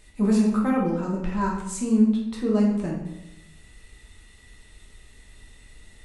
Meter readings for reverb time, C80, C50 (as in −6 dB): 0.90 s, 7.0 dB, 3.5 dB